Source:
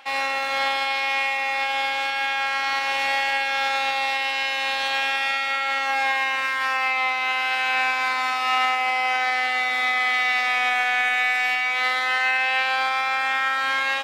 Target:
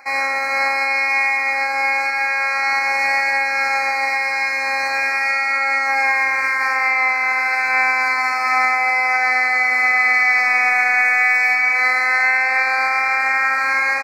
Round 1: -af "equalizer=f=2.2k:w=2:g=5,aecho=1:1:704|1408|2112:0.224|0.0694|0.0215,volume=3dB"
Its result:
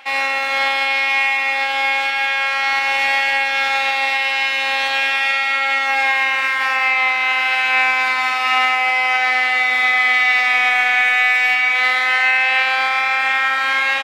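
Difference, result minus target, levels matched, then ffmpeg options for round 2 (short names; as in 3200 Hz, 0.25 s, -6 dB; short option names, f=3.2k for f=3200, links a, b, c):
4000 Hz band +9.5 dB
-af "asuperstop=centerf=3200:order=20:qfactor=2,equalizer=f=2.2k:w=2:g=5,aecho=1:1:704|1408|2112:0.224|0.0694|0.0215,volume=3dB"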